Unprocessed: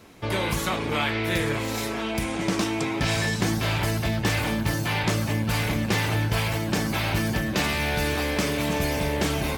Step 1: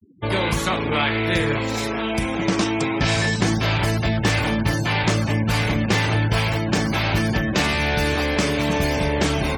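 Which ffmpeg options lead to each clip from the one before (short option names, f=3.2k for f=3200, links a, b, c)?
-af "equalizer=f=13k:t=o:w=0.4:g=-4,afftfilt=real='re*gte(hypot(re,im),0.0158)':imag='im*gte(hypot(re,im),0.0158)':win_size=1024:overlap=0.75,volume=4.5dB"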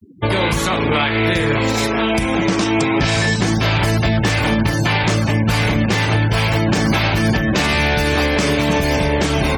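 -af "alimiter=limit=-15.5dB:level=0:latency=1:release=211,volume=8.5dB"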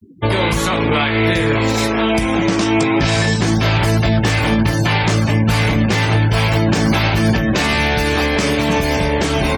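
-filter_complex "[0:a]asplit=2[a][b];[b]adelay=18,volume=-10.5dB[c];[a][c]amix=inputs=2:normalize=0"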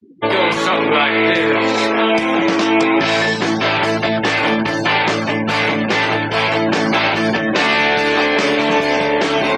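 -af "highpass=310,lowpass=4.2k,volume=3.5dB"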